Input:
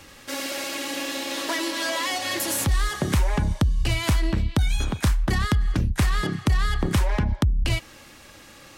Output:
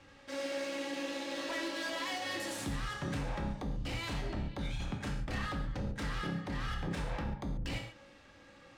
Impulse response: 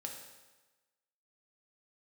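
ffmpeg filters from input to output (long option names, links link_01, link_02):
-filter_complex "[0:a]aeval=exprs='0.0944*(abs(mod(val(0)/0.0944+3,4)-2)-1)':channel_layout=same,adynamicsmooth=sensitivity=3:basefreq=4300[link_01];[1:a]atrim=start_sample=2205,atrim=end_sample=6615[link_02];[link_01][link_02]afir=irnorm=-1:irlink=0,volume=-7dB"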